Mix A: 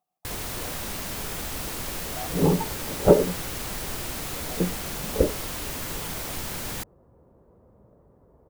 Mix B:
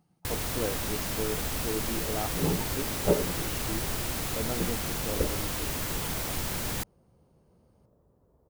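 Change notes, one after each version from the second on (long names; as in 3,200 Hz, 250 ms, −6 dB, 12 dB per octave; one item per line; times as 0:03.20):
speech: remove formant filter a
second sound −9.5 dB
master: add parametric band 77 Hz +3 dB 2.8 octaves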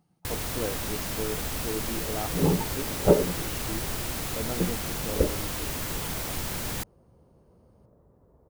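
second sound +5.5 dB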